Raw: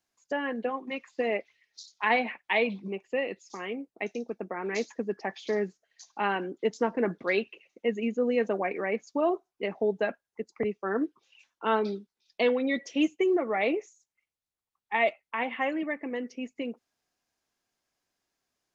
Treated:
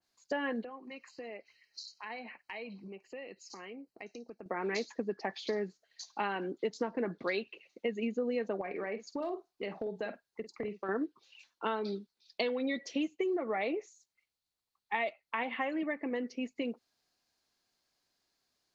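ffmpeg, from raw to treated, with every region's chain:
ffmpeg -i in.wav -filter_complex "[0:a]asettb=1/sr,asplit=3[link_01][link_02][link_03];[link_01]atrim=end=0.644[link_04];[link_02]atrim=start=0.64:end=4.46,asetpts=PTS-STARTPTS,afade=type=in:duration=0.004:curve=qsin,afade=type=out:start_time=3.816:duration=0.004:curve=qsin,acompressor=threshold=-49dB:ratio=2.5:attack=3.2:release=140:knee=1:detection=peak,asuperstop=centerf=3500:order=8:qfactor=5.5[link_05];[link_03]atrim=start=4.456[link_06];[link_04][link_05]acrossfade=duration=0.004:curve1=hsin:curve2=qsin[link_07];[link_07][link_06]acrossfade=duration=0.004:curve1=qsin:curve2=hsin,asettb=1/sr,asplit=3[link_08][link_09][link_10];[link_08]atrim=end=8.614[link_11];[link_09]atrim=start=8.61:end=10.89,asetpts=PTS-STARTPTS,afade=type=in:duration=0.004:curve=qsin,afade=type=out:start_time=2.276:duration=0.004:curve=qsin,asoftclip=type=hard:threshold=-17.5dB,acompressor=threshold=-34dB:ratio=4:attack=3.2:release=140:knee=1:detection=peak,asplit=2[link_12][link_13];[link_13]adelay=49,volume=-12dB[link_14];[link_12][link_14]amix=inputs=2:normalize=0,atrim=end_sample=100548[link_15];[link_10]atrim=start=10.886[link_16];[link_11][link_15]acrossfade=duration=0.004:curve1=hsin:curve2=qsin[link_17];[link_17][link_16]acrossfade=duration=0.004:curve1=qsin:curve2=hsin,equalizer=frequency=4300:width=3.2:gain=10,acompressor=threshold=-30dB:ratio=6,adynamicequalizer=threshold=0.00316:dfrequency=2400:dqfactor=0.7:tfrequency=2400:tqfactor=0.7:attack=5:release=100:ratio=0.375:range=2.5:mode=cutabove:tftype=highshelf" out.wav

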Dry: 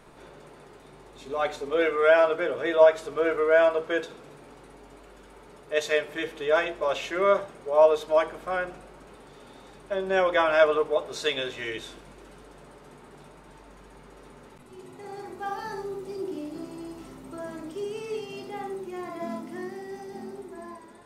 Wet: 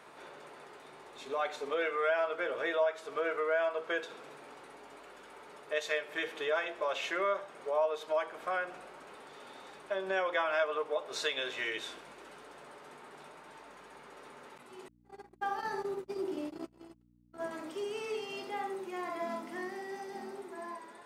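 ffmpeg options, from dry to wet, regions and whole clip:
ffmpeg -i in.wav -filter_complex "[0:a]asettb=1/sr,asplit=3[link_01][link_02][link_03];[link_01]atrim=end=14.884[link_04];[link_02]atrim=start=14.88:end=17.51,asetpts=PTS-STARTPTS,afade=type=in:duration=0.004:curve=qsin,afade=type=out:start_time=2.626:duration=0.004:curve=qsin,agate=range=-55dB:threshold=-37dB:ratio=16:release=100:detection=peak,lowshelf=frequency=400:gain=6.5,aeval=exprs='val(0)+0.00282*(sin(2*PI*60*n/s)+sin(2*PI*2*60*n/s)/2+sin(2*PI*3*60*n/s)/3+sin(2*PI*4*60*n/s)/4+sin(2*PI*5*60*n/s)/5)':channel_layout=same[link_05];[link_03]atrim=start=17.506[link_06];[link_04][link_05]acrossfade=duration=0.004:curve1=hsin:curve2=qsin[link_07];[link_07][link_06]acrossfade=duration=0.004:curve1=qsin:curve2=hsin,highpass=frequency=1000:poles=1,highshelf=frequency=3700:gain=-8,acompressor=threshold=-37dB:ratio=2.5,volume=4.5dB" out.wav

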